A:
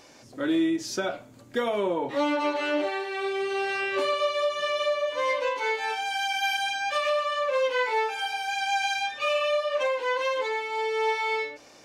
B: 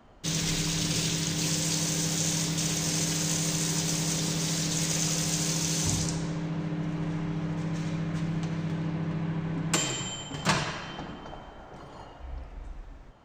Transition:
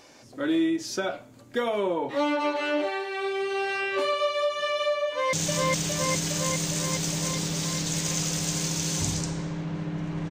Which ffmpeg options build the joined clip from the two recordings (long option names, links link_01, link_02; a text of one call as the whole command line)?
ffmpeg -i cue0.wav -i cue1.wav -filter_complex "[0:a]apad=whole_dur=10.3,atrim=end=10.3,atrim=end=5.332[link_01];[1:a]atrim=start=2.178:end=7.15[link_02];[link_01][link_02]acrossfade=duration=0.004:curve1=hsin:curve2=hsin,asplit=2[link_03][link_04];[link_04]afade=type=in:start_time=5.07:duration=0.01,afade=type=out:start_time=5.33:duration=0.01,aecho=0:1:410|820|1230|1640|2050|2460|2870|3280|3690|4100|4510|4920:1|0.7|0.49|0.343|0.2401|0.16807|0.117649|0.0823543|0.057648|0.0403536|0.0282475|0.0197733[link_05];[link_03][link_05]amix=inputs=2:normalize=0" out.wav